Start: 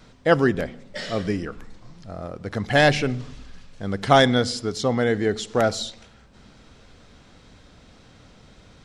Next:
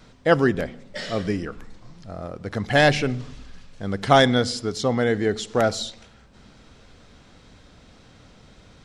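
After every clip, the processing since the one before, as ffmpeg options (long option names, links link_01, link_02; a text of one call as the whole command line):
ffmpeg -i in.wav -af anull out.wav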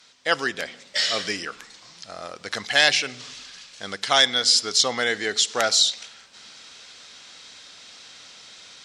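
ffmpeg -i in.wav -af "dynaudnorm=framelen=130:gausssize=3:maxgain=8.5dB,bandpass=frequency=5400:width_type=q:width=0.82:csg=0,volume=7dB" out.wav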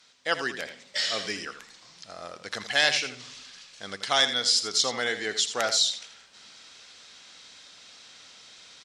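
ffmpeg -i in.wav -af "aecho=1:1:82:0.282,volume=-5dB" out.wav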